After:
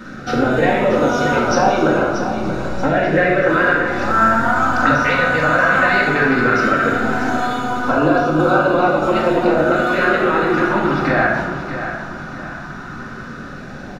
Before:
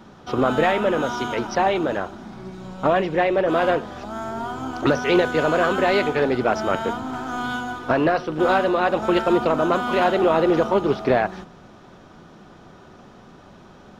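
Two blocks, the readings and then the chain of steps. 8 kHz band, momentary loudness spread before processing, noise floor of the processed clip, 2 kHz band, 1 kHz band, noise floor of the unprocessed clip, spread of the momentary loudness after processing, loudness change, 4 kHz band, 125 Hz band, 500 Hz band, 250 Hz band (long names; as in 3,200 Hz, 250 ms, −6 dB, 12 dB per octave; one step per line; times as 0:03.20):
can't be measured, 11 LU, −32 dBFS, +10.5 dB, +6.0 dB, −47 dBFS, 15 LU, +5.5 dB, +2.5 dB, +8.0 dB, +3.0 dB, +5.5 dB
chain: parametric band 1,500 Hz +11.5 dB 0.64 octaves
notch filter 3,200 Hz, Q 7.9
downward compressor 4 to 1, threshold −24 dBFS, peak gain reduction 12.5 dB
auto-filter notch sine 0.15 Hz 360–1,900 Hz
repeating echo 633 ms, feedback 36%, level −10 dB
rectangular room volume 830 cubic metres, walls mixed, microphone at 2.1 metres
level +8 dB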